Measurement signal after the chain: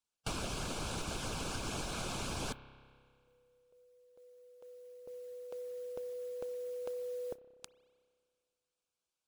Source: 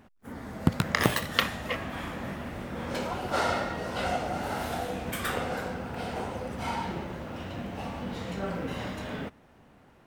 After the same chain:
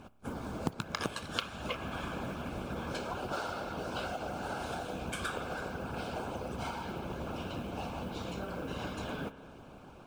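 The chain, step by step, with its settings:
low-pass filter 9,500 Hz 24 dB per octave
dynamic equaliser 1,600 Hz, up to +5 dB, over −50 dBFS, Q 4.9
Butterworth band-reject 1,900 Hz, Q 3.7
downward compressor 6 to 1, threshold −40 dBFS
noise that follows the level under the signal 28 dB
spring reverb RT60 2 s, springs 30 ms, chirp 50 ms, DRR 11.5 dB
harmonic and percussive parts rebalanced harmonic −10 dB
level +8.5 dB

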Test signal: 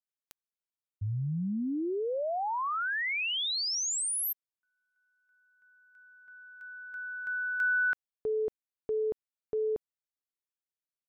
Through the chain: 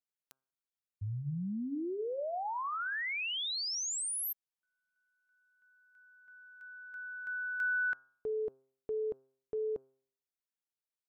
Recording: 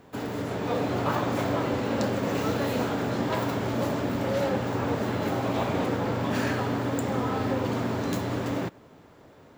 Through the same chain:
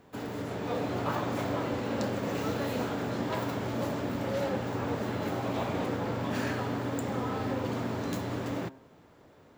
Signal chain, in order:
hum removal 132.7 Hz, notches 12
level −4.5 dB

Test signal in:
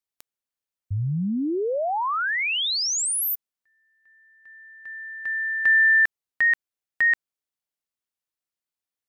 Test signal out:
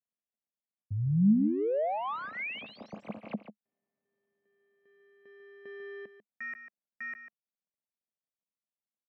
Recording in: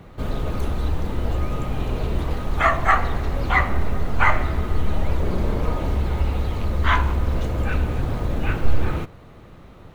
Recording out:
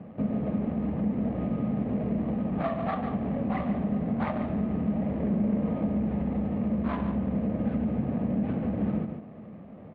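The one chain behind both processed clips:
running median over 25 samples
loudspeaker in its box 160–2,300 Hz, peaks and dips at 210 Hz +10 dB, 370 Hz −7 dB, 630 Hz +3 dB, 950 Hz −7 dB, 1,400 Hz −9 dB
single-tap delay 145 ms −10.5 dB
downward compressor 2.5 to 1, threshold −33 dBFS
dynamic equaliser 210 Hz, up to +6 dB, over −45 dBFS, Q 1.2
level +1.5 dB

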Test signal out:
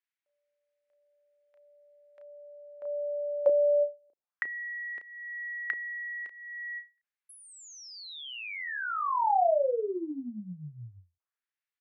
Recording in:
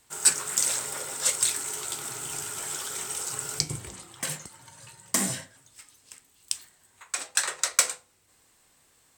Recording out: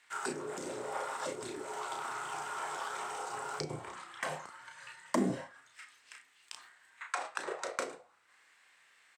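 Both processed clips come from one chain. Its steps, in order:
double-tracking delay 33 ms −4.5 dB
envelope filter 330–2,000 Hz, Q 2, down, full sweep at −22 dBFS
every ending faded ahead of time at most 240 dB per second
level +7 dB

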